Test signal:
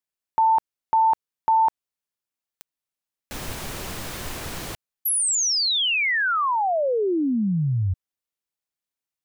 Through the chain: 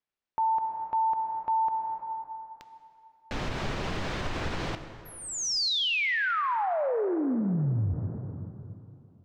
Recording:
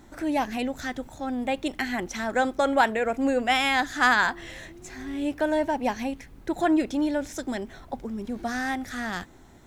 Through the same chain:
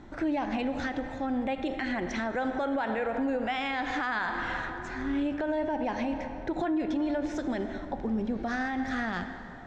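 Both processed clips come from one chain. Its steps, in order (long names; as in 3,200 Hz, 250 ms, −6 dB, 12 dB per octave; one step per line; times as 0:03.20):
high-frequency loss of the air 150 metres
dense smooth reverb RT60 2.8 s, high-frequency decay 0.6×, DRR 9.5 dB
downward compressor 2 to 1, threshold −27 dBFS
high-shelf EQ 6,400 Hz −4 dB
brickwall limiter −25 dBFS
level +3 dB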